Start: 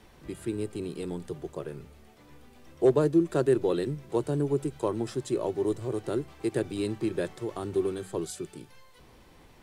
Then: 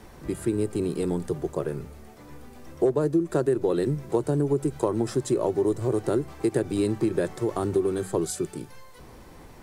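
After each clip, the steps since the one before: bell 3100 Hz -7 dB 1.1 oct; compressor 6:1, threshold -28 dBFS, peak gain reduction 11.5 dB; gain +8.5 dB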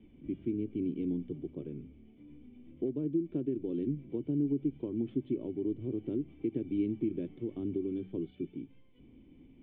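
vocal tract filter i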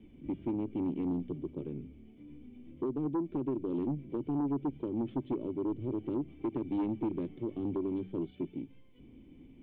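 sine folder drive 5 dB, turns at -21 dBFS; Doppler distortion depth 0.11 ms; gain -6.5 dB

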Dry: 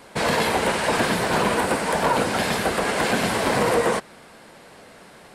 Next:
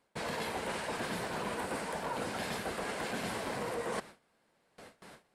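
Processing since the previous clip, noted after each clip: gate with hold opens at -35 dBFS; reverse; compressor 6:1, threshold -29 dBFS, peak gain reduction 12.5 dB; reverse; gain -5.5 dB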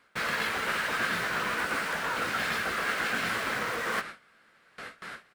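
doubler 18 ms -10.5 dB; in parallel at -4 dB: wrapped overs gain 39.5 dB; on the sum: EQ curve 930 Hz 0 dB, 1300 Hz +14 dB, 8700 Hz 0 dB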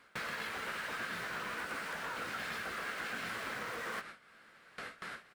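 compressor 2.5:1, threshold -45 dBFS, peak gain reduction 13.5 dB; gain +1.5 dB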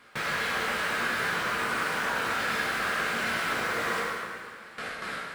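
plate-style reverb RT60 2 s, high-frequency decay 0.8×, DRR -4.5 dB; gain +5.5 dB

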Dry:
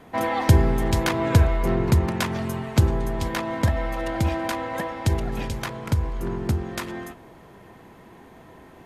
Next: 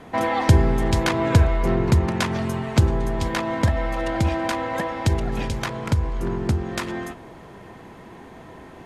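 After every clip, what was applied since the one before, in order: LPF 9600 Hz 12 dB/oct; in parallel at -2 dB: compressor, threshold -31 dBFS, peak gain reduction 19.5 dB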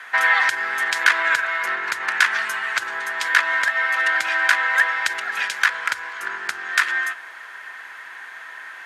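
limiter -13 dBFS, peak gain reduction 10.5 dB; resonant high-pass 1600 Hz, resonance Q 4.5; gain +6 dB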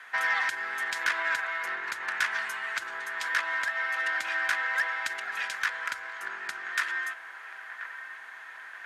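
soft clip -8.5 dBFS, distortion -17 dB; band-limited delay 1.033 s, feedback 61%, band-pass 1100 Hz, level -11.5 dB; gain -9 dB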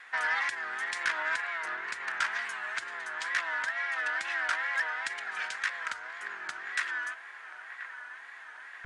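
wow and flutter 110 cents; downsampling 22050 Hz; gain -2.5 dB

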